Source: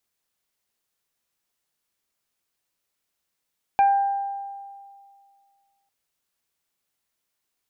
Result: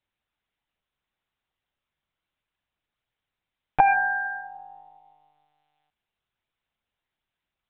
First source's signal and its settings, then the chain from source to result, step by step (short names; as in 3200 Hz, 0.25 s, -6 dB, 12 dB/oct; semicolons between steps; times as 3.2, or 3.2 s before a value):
additive tone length 2.10 s, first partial 795 Hz, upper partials -18/-17 dB, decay 2.11 s, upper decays 1.13/0.24 s, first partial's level -13 dB
monotone LPC vocoder at 8 kHz 150 Hz